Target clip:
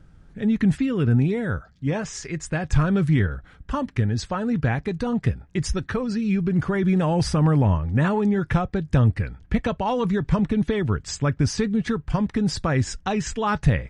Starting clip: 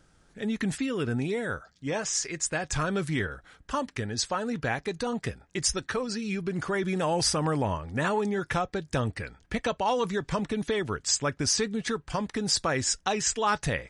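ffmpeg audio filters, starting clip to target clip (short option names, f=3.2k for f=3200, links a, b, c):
-af "bass=f=250:g=13,treble=f=4k:g=-10,volume=1.5dB"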